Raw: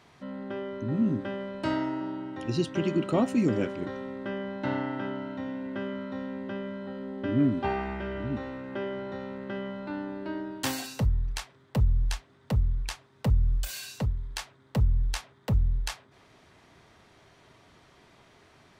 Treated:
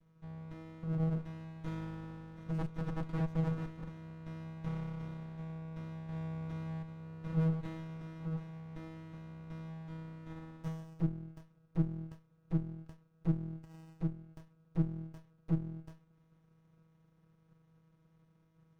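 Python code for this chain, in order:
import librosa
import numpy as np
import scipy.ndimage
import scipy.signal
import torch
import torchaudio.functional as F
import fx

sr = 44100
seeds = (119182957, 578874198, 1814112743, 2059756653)

y = fx.leveller(x, sr, passes=2, at=(6.08, 6.82))
y = fx.vocoder(y, sr, bands=8, carrier='saw', carrier_hz=161.0)
y = fx.running_max(y, sr, window=65)
y = F.gain(torch.from_numpy(y), -4.0).numpy()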